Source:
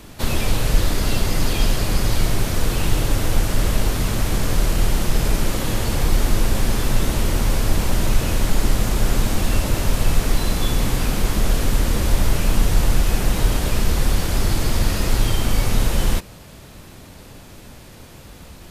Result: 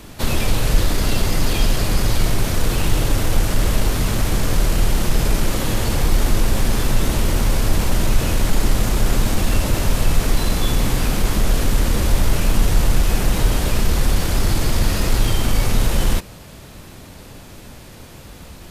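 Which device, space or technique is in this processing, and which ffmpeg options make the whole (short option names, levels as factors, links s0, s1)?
parallel distortion: -filter_complex "[0:a]asplit=2[s0][s1];[s1]asoftclip=type=hard:threshold=0.133,volume=0.282[s2];[s0][s2]amix=inputs=2:normalize=0"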